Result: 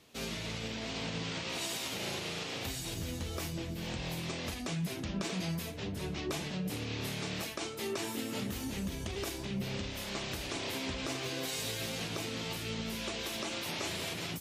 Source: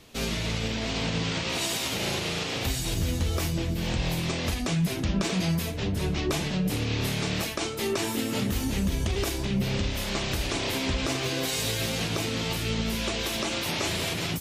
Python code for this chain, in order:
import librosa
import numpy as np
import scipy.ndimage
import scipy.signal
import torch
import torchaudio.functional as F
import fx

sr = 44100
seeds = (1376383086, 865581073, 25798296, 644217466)

y = fx.highpass(x, sr, hz=120.0, slope=6)
y = y * librosa.db_to_amplitude(-8.0)